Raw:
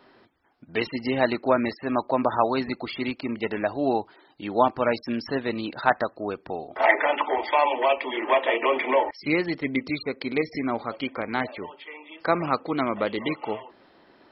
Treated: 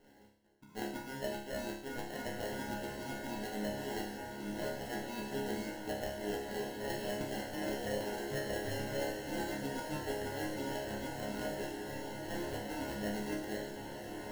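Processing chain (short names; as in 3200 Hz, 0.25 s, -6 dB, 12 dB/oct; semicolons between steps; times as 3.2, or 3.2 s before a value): low shelf 390 Hz +5.5 dB; reverse; compressor 10:1, threshold -28 dBFS, peak gain reduction 16.5 dB; reverse; added harmonics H 6 -21 dB, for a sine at -16 dBFS; sample-rate reducer 1200 Hz, jitter 0%; resonator bank C#2 fifth, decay 0.63 s; on a send: diffused feedback echo 1.534 s, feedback 59%, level -4.5 dB; on the sum: gain +6.5 dB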